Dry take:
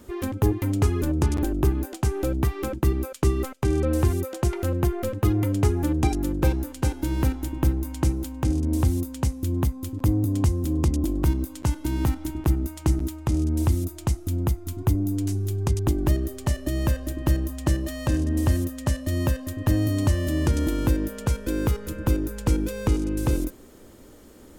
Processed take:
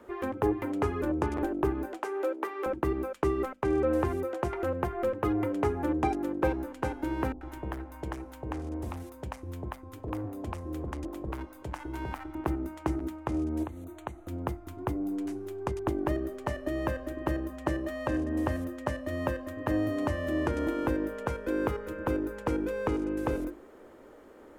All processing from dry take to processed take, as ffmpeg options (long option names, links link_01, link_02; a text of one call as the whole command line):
ffmpeg -i in.wav -filter_complex "[0:a]asettb=1/sr,asplit=3[link_01][link_02][link_03];[link_01]atrim=end=1.994[link_04];[link_02]atrim=start=1.99:end=2.66,asetpts=PTS-STARTPTS,afade=type=in:duration=0.004:curve=qsin,afade=type=out:start_time=0.666:duration=0.004:curve=qsin,highpass=frequency=370:width=0.5412,highpass=frequency=370:width=1.3066,bandreject=frequency=720:width=7.4[link_05];[link_03]atrim=start=2.656[link_06];[link_04][link_05]acrossfade=duration=0.004:curve1=hsin:curve2=qsin[link_07];[link_07][link_06]acrossfade=duration=0.004:curve1=qsin:curve2=hsin,asettb=1/sr,asplit=3[link_08][link_09][link_10];[link_08]atrim=end=7.324[link_11];[link_09]atrim=start=7.32:end=12.35,asetpts=PTS-STARTPTS,afade=type=in:duration=0.004:curve=qsin,afade=type=out:start_time=5.026:duration=0.004:curve=qsin,equalizer=frequency=250:width_type=o:width=1:gain=-9.5,asoftclip=type=hard:threshold=-21dB,acrossover=split=630[link_12][link_13];[link_13]adelay=90[link_14];[link_12][link_14]amix=inputs=2:normalize=0,atrim=end_sample=221823[link_15];[link_10]atrim=start=12.346[link_16];[link_11][link_15]acrossfade=duration=0.004:curve1=hsin:curve2=qsin[link_17];[link_17][link_16]acrossfade=duration=0.004:curve1=qsin:curve2=hsin,asettb=1/sr,asplit=3[link_18][link_19][link_20];[link_18]atrim=end=13.634[link_21];[link_19]atrim=start=13.63:end=14.28,asetpts=PTS-STARTPTS,afade=type=in:duration=0.004:curve=qsin,afade=type=out:start_time=0.646:duration=0.004:curve=qsin,acompressor=threshold=-28dB:ratio=5:attack=3.2:release=140:knee=1:detection=peak,asuperstop=centerf=5100:order=8:qfactor=3.5[link_22];[link_20]atrim=start=14.276[link_23];[link_21][link_22]acrossfade=duration=0.004:curve1=hsin:curve2=qsin[link_24];[link_24][link_23]acrossfade=duration=0.004:curve1=qsin:curve2=hsin,acrossover=split=320 2200:gain=0.178 1 0.112[link_25][link_26][link_27];[link_25][link_26][link_27]amix=inputs=3:normalize=0,bandreject=frequency=50:width_type=h:width=6,bandreject=frequency=100:width_type=h:width=6,bandreject=frequency=150:width_type=h:width=6,bandreject=frequency=200:width_type=h:width=6,bandreject=frequency=250:width_type=h:width=6,bandreject=frequency=300:width_type=h:width=6,bandreject=frequency=350:width_type=h:width=6,volume=2dB" out.wav